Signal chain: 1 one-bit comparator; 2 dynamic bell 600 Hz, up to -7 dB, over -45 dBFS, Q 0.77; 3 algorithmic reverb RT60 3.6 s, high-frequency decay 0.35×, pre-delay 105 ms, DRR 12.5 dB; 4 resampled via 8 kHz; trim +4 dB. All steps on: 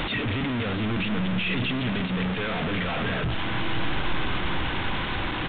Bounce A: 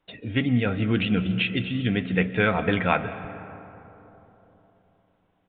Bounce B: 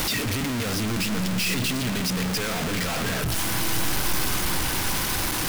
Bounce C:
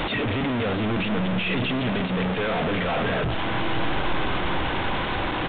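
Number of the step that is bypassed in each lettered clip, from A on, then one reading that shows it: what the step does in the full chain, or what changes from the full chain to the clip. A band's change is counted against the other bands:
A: 1, crest factor change +11.0 dB; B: 4, 4 kHz band +3.5 dB; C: 2, loudness change +2.0 LU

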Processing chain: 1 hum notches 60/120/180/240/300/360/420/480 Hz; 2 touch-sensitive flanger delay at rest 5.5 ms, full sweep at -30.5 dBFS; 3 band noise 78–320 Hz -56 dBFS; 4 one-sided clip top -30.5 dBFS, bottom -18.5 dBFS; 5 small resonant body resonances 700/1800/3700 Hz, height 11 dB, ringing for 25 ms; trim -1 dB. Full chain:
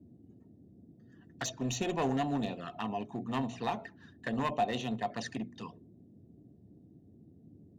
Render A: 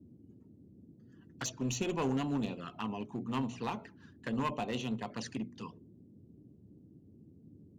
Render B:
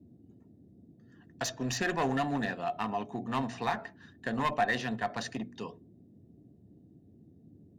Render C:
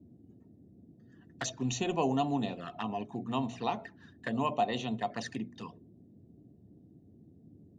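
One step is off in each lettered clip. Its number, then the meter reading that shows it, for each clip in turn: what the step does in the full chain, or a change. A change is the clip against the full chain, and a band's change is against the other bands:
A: 5, 1 kHz band -4.0 dB; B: 2, 2 kHz band +6.5 dB; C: 4, distortion -13 dB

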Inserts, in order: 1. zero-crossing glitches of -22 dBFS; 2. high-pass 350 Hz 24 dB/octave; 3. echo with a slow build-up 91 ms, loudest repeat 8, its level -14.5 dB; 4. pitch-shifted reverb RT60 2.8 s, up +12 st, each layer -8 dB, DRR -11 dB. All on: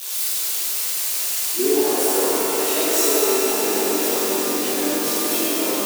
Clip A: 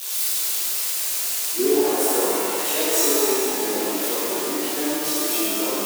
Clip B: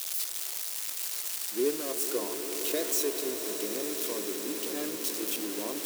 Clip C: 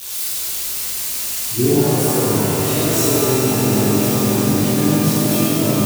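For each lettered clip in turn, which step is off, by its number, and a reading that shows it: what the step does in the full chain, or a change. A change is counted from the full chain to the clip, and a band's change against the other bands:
3, momentary loudness spread change +1 LU; 4, 1 kHz band -5.5 dB; 2, 250 Hz band +8.5 dB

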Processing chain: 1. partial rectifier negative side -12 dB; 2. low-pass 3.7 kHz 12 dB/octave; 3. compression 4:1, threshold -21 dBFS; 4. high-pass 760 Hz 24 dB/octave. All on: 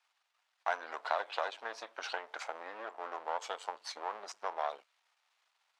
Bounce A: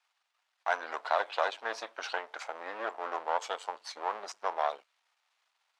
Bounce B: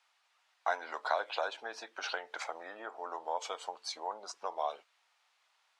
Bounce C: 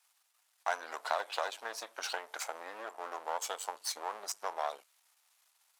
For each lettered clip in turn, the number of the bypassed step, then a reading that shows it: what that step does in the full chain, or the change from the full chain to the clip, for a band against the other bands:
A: 3, crest factor change -2.0 dB; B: 1, distortion -5 dB; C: 2, momentary loudness spread change -1 LU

